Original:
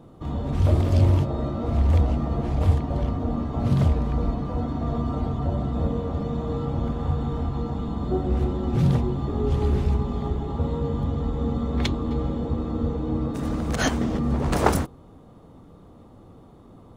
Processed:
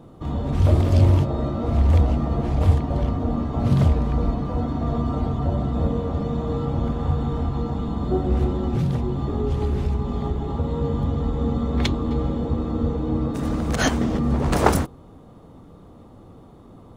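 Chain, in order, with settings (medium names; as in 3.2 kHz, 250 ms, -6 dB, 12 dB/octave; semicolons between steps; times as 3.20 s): 8.65–10.78 s: compression, threshold -21 dBFS, peak gain reduction 6.5 dB; trim +2.5 dB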